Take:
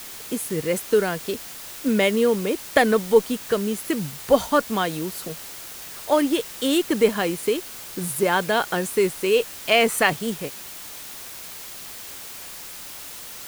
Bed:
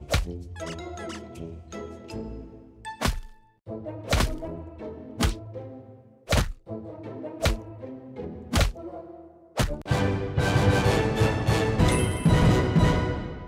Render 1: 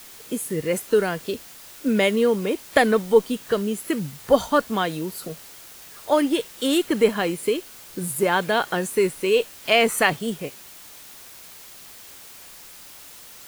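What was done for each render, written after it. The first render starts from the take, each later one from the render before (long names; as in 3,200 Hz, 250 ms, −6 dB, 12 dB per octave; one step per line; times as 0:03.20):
noise reduction from a noise print 6 dB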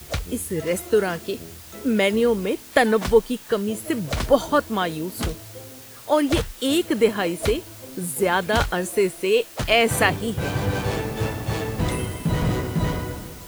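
mix in bed −3 dB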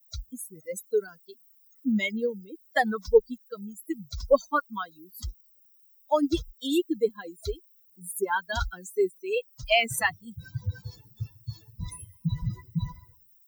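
spectral dynamics exaggerated over time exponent 3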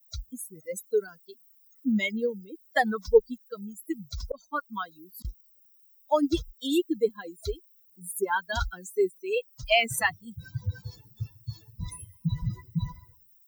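0:04.24–0:05.25: volume swells 462 ms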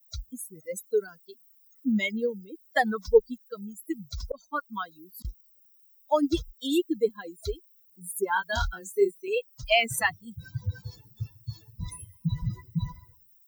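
0:08.34–0:09.28: double-tracking delay 25 ms −4 dB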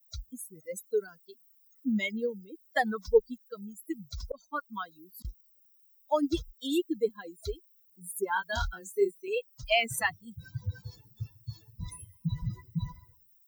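level −3.5 dB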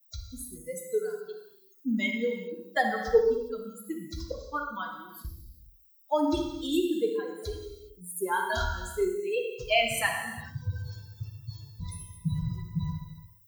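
delay with a low-pass on its return 66 ms, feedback 32%, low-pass 1,600 Hz, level −9 dB
reverb whose tail is shaped and stops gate 440 ms falling, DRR 2 dB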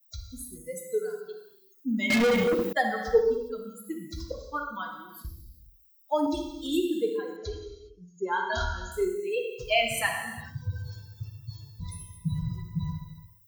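0:02.10–0:02.73: leveller curve on the samples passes 5
0:06.26–0:06.66: phaser with its sweep stopped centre 420 Hz, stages 6
0:07.36–0:08.92: linear-phase brick-wall low-pass 7,100 Hz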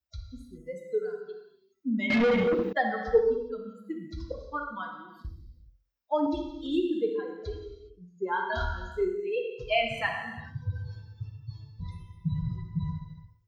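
high-frequency loss of the air 220 metres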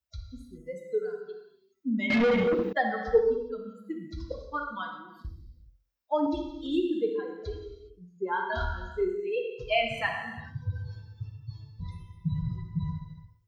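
0:04.27–0:04.99: dynamic equaliser 3,800 Hz, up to +7 dB, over −55 dBFS, Q 0.89
0:08.17–0:09.09: high-frequency loss of the air 74 metres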